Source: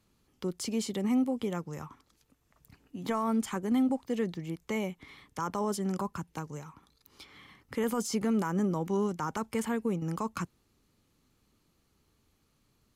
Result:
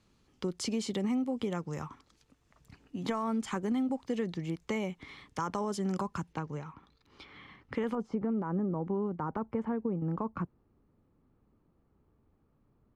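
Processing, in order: LPF 7200 Hz 12 dB/oct, from 6.33 s 3200 Hz, from 7.95 s 1000 Hz; compressor, threshold -31 dBFS, peak gain reduction 7.5 dB; gain +2.5 dB

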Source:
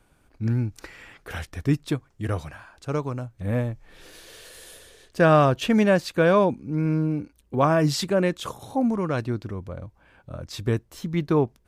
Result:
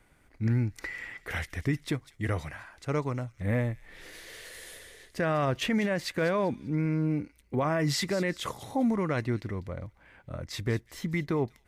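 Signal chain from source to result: bell 2000 Hz +14.5 dB 0.23 oct; limiter -17.5 dBFS, peak gain reduction 11 dB; thin delay 0.196 s, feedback 32%, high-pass 3700 Hz, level -12.5 dB; gain -2 dB

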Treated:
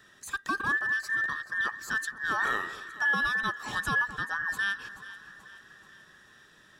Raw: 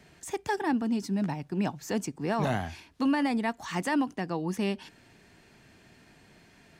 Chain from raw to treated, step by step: band inversion scrambler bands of 2000 Hz; echo with dull and thin repeats by turns 0.216 s, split 1300 Hz, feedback 72%, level -12.5 dB; gain -1 dB

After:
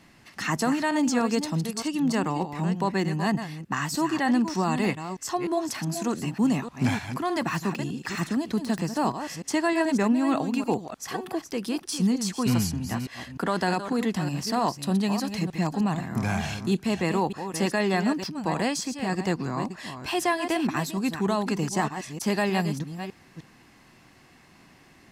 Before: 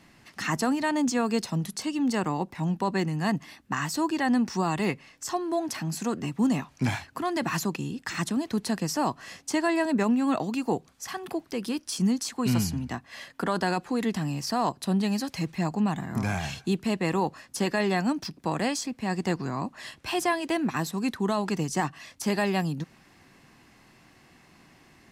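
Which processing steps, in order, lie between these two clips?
reverse delay 0.304 s, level -9 dB; 7.39–9.04 de-esser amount 85%; gain +1 dB

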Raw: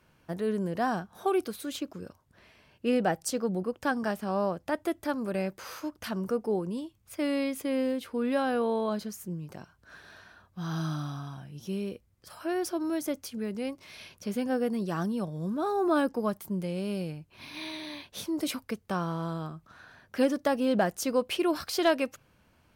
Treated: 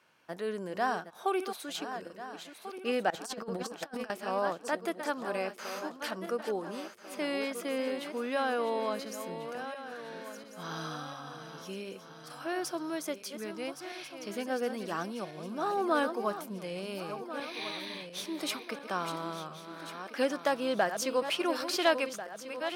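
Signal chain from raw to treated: regenerating reverse delay 0.696 s, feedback 64%, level -9.5 dB; weighting filter A; 3.1–4.1 negative-ratio compressor -38 dBFS, ratio -0.5

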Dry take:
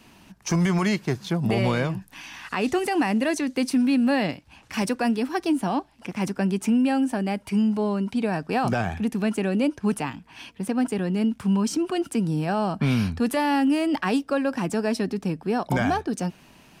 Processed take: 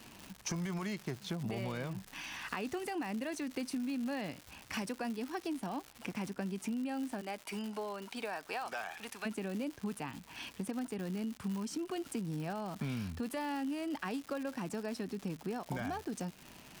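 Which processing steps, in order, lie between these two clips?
7.2–9.25 HPF 390 Hz -> 990 Hz 12 dB/oct; compressor 5:1, threshold -33 dBFS, peak gain reduction 13.5 dB; crackle 240/s -36 dBFS; gain -3.5 dB

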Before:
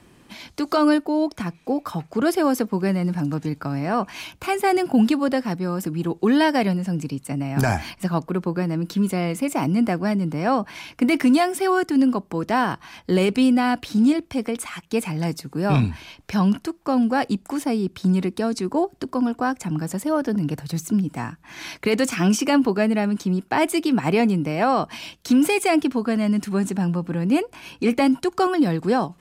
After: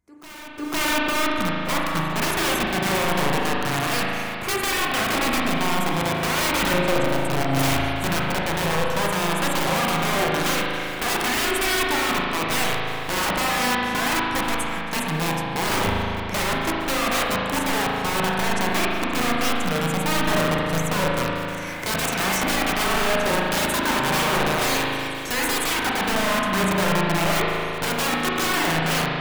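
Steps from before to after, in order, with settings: opening faded in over 1.43 s; band shelf 3700 Hz -10 dB 1.1 oct; wrapped overs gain 20 dB; de-hum 71.55 Hz, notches 30; on a send: reverse echo 0.505 s -17.5 dB; on the sum: spring tank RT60 2.8 s, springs 37 ms, chirp 55 ms, DRR -3 dB

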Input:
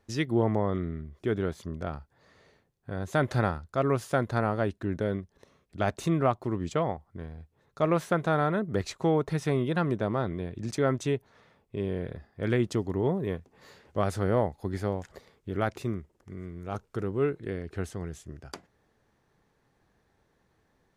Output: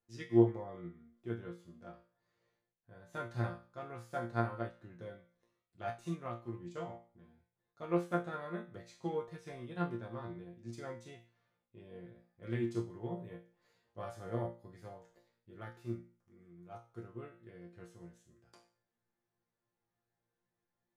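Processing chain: resonator bank A#2 fifth, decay 0.44 s; upward expander 1.5:1, over -52 dBFS; gain +7.5 dB

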